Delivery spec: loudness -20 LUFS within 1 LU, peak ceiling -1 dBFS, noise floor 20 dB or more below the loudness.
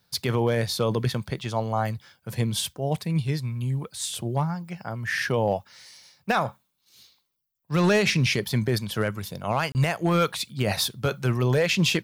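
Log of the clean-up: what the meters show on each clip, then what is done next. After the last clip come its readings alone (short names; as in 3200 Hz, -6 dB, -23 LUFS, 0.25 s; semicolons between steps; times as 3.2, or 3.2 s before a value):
clipped 0.3%; flat tops at -14.0 dBFS; dropouts 1; longest dropout 29 ms; loudness -26.0 LUFS; peak -14.0 dBFS; loudness target -20.0 LUFS
-> clip repair -14 dBFS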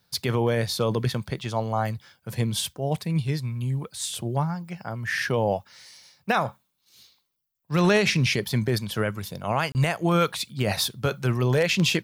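clipped 0.0%; dropouts 1; longest dropout 29 ms
-> interpolate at 9.72, 29 ms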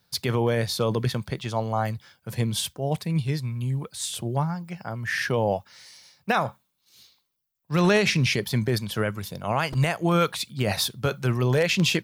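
dropouts 0; loudness -25.5 LUFS; peak -7.5 dBFS; loudness target -20.0 LUFS
-> gain +5.5 dB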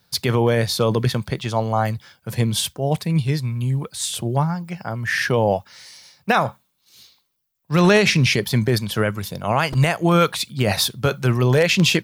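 loudness -20.0 LUFS; peak -2.0 dBFS; noise floor -69 dBFS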